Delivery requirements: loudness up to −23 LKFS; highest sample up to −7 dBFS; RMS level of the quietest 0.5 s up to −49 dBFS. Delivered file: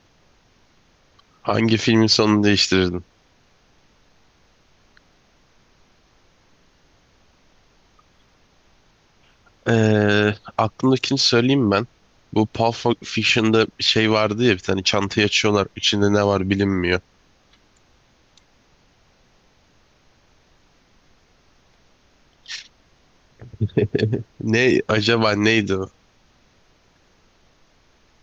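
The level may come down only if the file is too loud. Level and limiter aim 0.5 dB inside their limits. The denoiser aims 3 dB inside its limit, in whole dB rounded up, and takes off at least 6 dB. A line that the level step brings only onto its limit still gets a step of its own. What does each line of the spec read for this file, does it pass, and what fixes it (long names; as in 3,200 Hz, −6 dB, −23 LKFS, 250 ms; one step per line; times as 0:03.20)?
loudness −18.5 LKFS: out of spec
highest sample −4.5 dBFS: out of spec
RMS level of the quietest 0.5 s −58 dBFS: in spec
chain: level −5 dB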